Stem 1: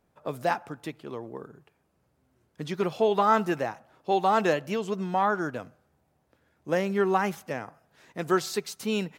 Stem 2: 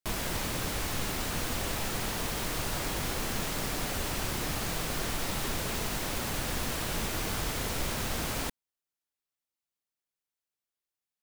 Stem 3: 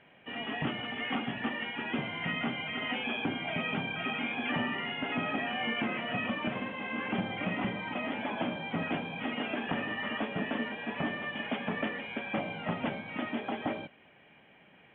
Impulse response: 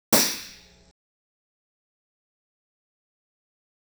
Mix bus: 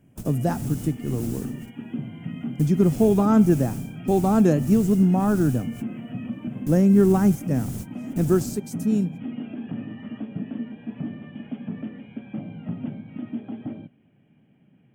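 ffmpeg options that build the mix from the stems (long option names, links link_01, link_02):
-filter_complex "[0:a]equalizer=frequency=3000:width=2.2:gain=-7,acontrast=72,volume=-0.5dB,afade=type=out:start_time=8.23:duration=0.34:silence=0.473151,asplit=2[link_01][link_02];[1:a]tremolo=f=1.7:d=0.94,adelay=100,volume=2.5dB[link_03];[2:a]volume=-2.5dB[link_04];[link_02]apad=whole_len=499219[link_05];[link_03][link_05]sidechaingate=range=-42dB:threshold=-49dB:ratio=16:detection=peak[link_06];[link_06][link_04]amix=inputs=2:normalize=0,asoftclip=type=tanh:threshold=-16.5dB,alimiter=level_in=3dB:limit=-24dB:level=0:latency=1:release=90,volume=-3dB,volume=0dB[link_07];[link_01][link_07]amix=inputs=2:normalize=0,equalizer=frequency=125:width_type=o:width=1:gain=12,equalizer=frequency=250:width_type=o:width=1:gain=8,equalizer=frequency=500:width_type=o:width=1:gain=-5,equalizer=frequency=1000:width_type=o:width=1:gain=-10,equalizer=frequency=2000:width_type=o:width=1:gain=-10,equalizer=frequency=4000:width_type=o:width=1:gain=-11,equalizer=frequency=8000:width_type=o:width=1:gain=3"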